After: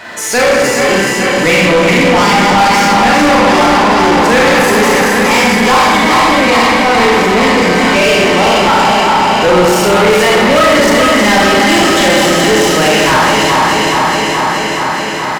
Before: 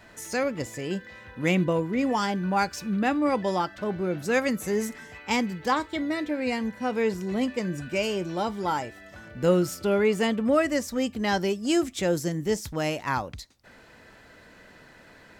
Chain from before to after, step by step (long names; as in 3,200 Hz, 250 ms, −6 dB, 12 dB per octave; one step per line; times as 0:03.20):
feedback delay that plays each chunk backwards 212 ms, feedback 84%, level −5.5 dB
on a send: single-tap delay 425 ms −10.5 dB
on the sum: four-comb reverb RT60 1 s, combs from 30 ms, DRR −3.5 dB
mid-hump overdrive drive 29 dB, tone 4,700 Hz, clips at −2 dBFS
level +1 dB